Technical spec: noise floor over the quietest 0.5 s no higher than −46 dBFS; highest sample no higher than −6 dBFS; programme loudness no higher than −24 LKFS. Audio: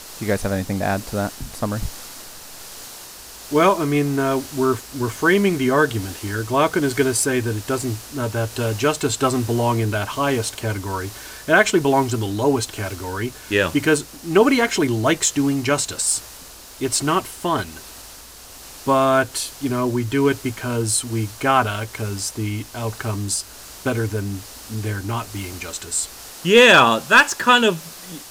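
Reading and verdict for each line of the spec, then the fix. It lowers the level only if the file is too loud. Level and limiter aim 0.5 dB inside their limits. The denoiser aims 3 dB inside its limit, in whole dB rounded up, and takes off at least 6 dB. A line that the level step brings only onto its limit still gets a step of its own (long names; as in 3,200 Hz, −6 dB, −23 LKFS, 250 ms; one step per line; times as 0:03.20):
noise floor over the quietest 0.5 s −41 dBFS: out of spec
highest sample −3.0 dBFS: out of spec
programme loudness −20.0 LKFS: out of spec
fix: broadband denoise 6 dB, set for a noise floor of −41 dBFS
level −4.5 dB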